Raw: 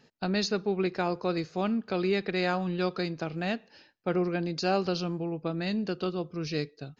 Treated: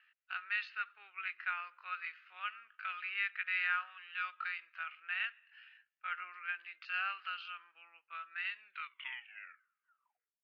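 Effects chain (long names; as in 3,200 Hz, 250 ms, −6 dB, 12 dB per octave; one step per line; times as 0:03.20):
turntable brake at the end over 1.25 s
tempo change 0.67×
Chebyshev band-pass filter 1,300–2,900 Hz, order 3
level +1.5 dB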